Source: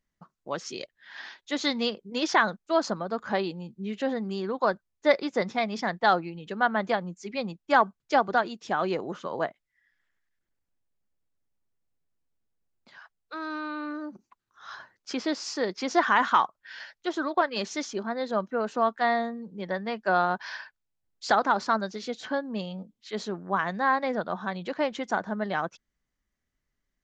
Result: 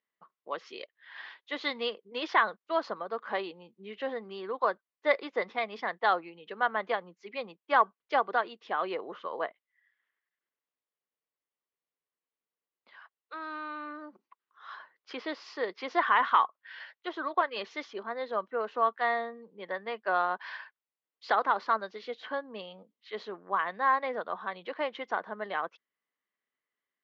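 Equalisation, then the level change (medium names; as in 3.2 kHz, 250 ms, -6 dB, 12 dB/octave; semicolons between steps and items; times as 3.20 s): cabinet simulation 370–4100 Hz, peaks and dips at 460 Hz +5 dB, 1.1 kHz +7 dB, 2 kHz +5 dB, 3 kHz +4 dB; -6.0 dB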